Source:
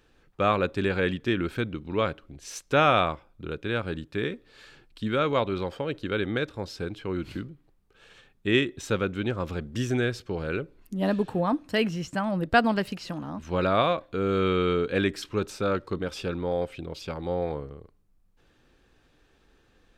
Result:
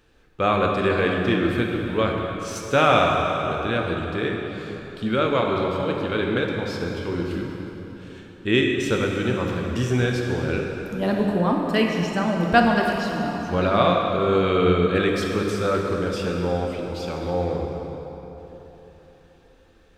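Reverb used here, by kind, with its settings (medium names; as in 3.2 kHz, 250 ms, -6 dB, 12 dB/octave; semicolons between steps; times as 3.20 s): plate-style reverb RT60 3.8 s, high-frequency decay 0.7×, DRR 0 dB; trim +2 dB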